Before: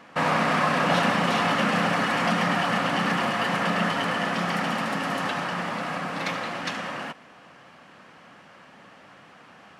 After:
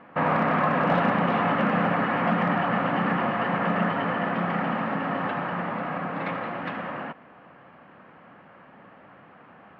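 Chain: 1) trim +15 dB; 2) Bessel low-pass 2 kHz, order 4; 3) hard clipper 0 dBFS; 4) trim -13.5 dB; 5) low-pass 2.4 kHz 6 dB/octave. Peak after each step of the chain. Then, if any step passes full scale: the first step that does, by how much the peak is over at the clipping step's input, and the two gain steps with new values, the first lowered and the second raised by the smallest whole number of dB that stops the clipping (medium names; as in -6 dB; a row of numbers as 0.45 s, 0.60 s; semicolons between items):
+5.5 dBFS, +4.0 dBFS, 0.0 dBFS, -13.5 dBFS, -13.5 dBFS; step 1, 4.0 dB; step 1 +11 dB, step 4 -9.5 dB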